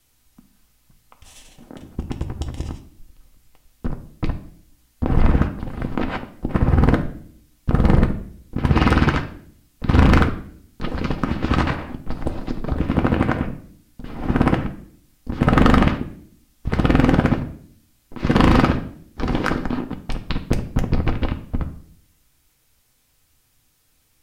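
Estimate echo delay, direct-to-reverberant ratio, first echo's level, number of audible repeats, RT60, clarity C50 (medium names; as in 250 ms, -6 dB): no echo, 5.0 dB, no echo, no echo, 0.60 s, 12.0 dB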